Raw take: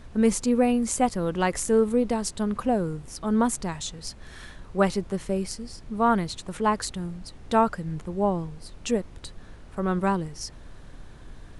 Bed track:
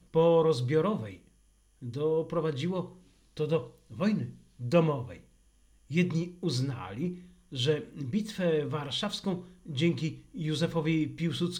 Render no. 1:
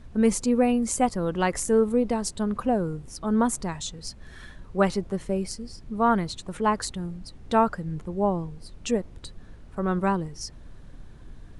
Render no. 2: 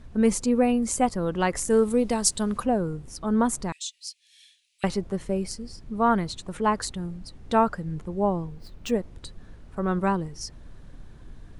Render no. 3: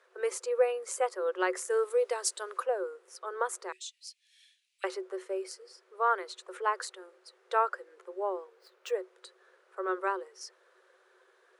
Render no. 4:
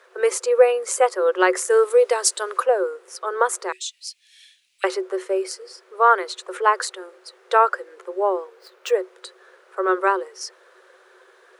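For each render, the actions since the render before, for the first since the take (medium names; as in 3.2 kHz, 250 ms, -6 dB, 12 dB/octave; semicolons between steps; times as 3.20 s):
noise reduction 6 dB, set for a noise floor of -46 dBFS
1.70–2.64 s: treble shelf 3 kHz +11.5 dB; 3.72–4.84 s: steep high-pass 2.4 kHz 48 dB/octave; 8.38–8.93 s: median filter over 5 samples
rippled Chebyshev high-pass 360 Hz, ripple 9 dB
trim +12 dB; peak limiter -3 dBFS, peak gain reduction 2 dB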